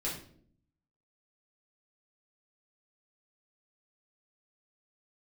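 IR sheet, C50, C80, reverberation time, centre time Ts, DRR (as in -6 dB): 5.5 dB, 10.0 dB, 0.60 s, 34 ms, -6.5 dB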